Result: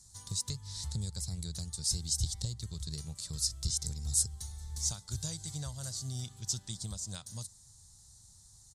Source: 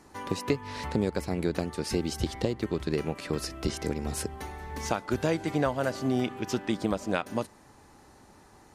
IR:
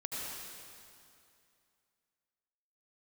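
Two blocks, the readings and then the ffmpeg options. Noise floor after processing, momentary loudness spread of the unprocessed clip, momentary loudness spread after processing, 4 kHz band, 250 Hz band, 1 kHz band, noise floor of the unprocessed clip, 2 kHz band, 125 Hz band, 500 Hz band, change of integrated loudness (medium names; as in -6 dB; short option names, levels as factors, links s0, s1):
-59 dBFS, 6 LU, 10 LU, +1.5 dB, -17.5 dB, -23.0 dB, -56 dBFS, -22.5 dB, -3.0 dB, -27.0 dB, -4.5 dB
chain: -af "firequalizer=gain_entry='entry(110,0);entry(280,-29);entry(940,-22);entry(2600,-23);entry(3700,0);entry(7900,12);entry(13000,-3)':delay=0.05:min_phase=1"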